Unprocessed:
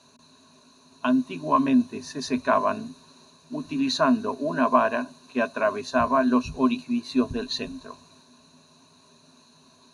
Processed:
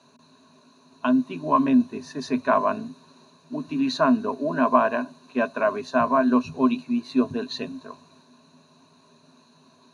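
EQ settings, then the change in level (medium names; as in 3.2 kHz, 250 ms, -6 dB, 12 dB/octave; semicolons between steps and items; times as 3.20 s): high-pass 110 Hz 24 dB/octave; treble shelf 3.9 kHz -10 dB; +1.5 dB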